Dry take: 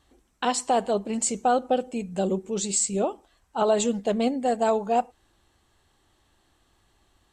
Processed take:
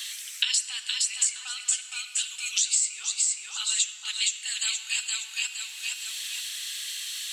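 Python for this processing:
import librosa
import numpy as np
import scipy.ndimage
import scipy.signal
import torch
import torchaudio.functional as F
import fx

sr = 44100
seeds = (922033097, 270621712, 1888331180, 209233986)

y = scipy.signal.sosfilt(scipy.signal.cheby2(4, 60, 650.0, 'highpass', fs=sr, output='sos'), x)
y = fx.echo_feedback(y, sr, ms=466, feedback_pct=24, wet_db=-5)
y = fx.room_shoebox(y, sr, seeds[0], volume_m3=2300.0, walls='mixed', distance_m=0.7)
y = fx.band_squash(y, sr, depth_pct=100)
y = y * 10.0 ** (6.5 / 20.0)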